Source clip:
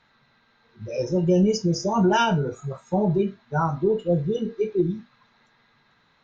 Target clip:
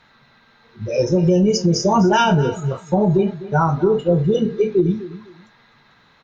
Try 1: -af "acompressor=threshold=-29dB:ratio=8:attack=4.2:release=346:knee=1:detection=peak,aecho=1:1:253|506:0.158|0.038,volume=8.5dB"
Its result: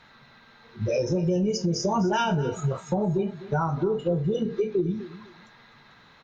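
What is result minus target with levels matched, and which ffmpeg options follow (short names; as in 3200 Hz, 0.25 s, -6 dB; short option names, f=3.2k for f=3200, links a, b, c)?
compressor: peak gain reduction +9 dB
-af "acompressor=threshold=-18.5dB:ratio=8:attack=4.2:release=346:knee=1:detection=peak,aecho=1:1:253|506:0.158|0.038,volume=8.5dB"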